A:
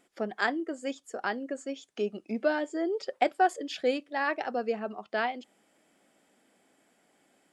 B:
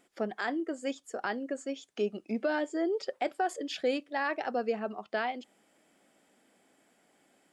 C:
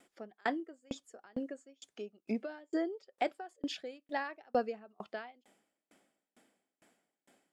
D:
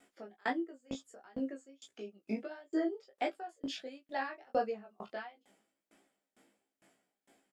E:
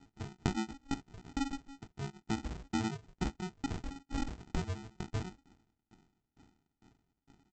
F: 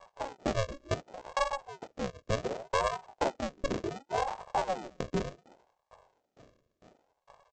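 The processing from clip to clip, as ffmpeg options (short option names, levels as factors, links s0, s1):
-af "alimiter=limit=0.0944:level=0:latency=1:release=42"
-af "aeval=exprs='val(0)*pow(10,-36*if(lt(mod(2.2*n/s,1),2*abs(2.2)/1000),1-mod(2.2*n/s,1)/(2*abs(2.2)/1000),(mod(2.2*n/s,1)-2*abs(2.2)/1000)/(1-2*abs(2.2)/1000))/20)':c=same,volume=1.5"
-filter_complex "[0:a]flanger=delay=17.5:depth=5.3:speed=1.5,asplit=2[s0][s1];[s1]adelay=15,volume=0.562[s2];[s0][s2]amix=inputs=2:normalize=0,volume=1.19"
-af "acompressor=threshold=0.0158:ratio=5,aresample=16000,acrusher=samples=29:mix=1:aa=0.000001,aresample=44100,volume=1.78"
-af "aresample=16000,volume=25.1,asoftclip=hard,volume=0.0398,aresample=44100,aeval=exprs='val(0)*sin(2*PI*570*n/s+570*0.5/0.68*sin(2*PI*0.68*n/s))':c=same,volume=2.51"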